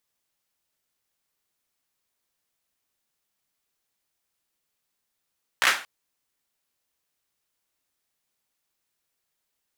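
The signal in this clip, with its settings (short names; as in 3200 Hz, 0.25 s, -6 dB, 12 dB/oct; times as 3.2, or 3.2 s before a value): hand clap length 0.23 s, apart 16 ms, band 1600 Hz, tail 0.36 s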